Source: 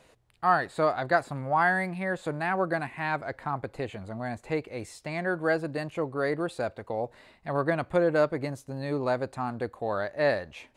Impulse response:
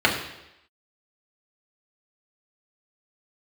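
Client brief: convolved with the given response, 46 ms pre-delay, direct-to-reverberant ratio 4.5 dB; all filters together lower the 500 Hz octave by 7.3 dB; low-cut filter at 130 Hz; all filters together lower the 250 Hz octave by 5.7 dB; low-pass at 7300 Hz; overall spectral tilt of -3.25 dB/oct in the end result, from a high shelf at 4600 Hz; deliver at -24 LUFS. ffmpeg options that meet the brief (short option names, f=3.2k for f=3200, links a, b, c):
-filter_complex "[0:a]highpass=130,lowpass=7.3k,equalizer=f=250:t=o:g=-4.5,equalizer=f=500:t=o:g=-8.5,highshelf=f=4.6k:g=8.5,asplit=2[a][b];[1:a]atrim=start_sample=2205,adelay=46[c];[b][c]afir=irnorm=-1:irlink=0,volume=-24dB[d];[a][d]amix=inputs=2:normalize=0,volume=7dB"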